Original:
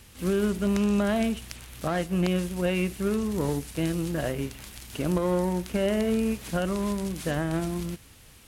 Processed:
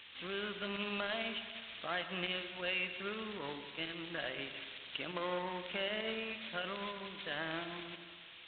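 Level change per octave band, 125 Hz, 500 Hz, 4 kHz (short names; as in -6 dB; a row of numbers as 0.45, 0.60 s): -22.5, -13.5, +0.5 dB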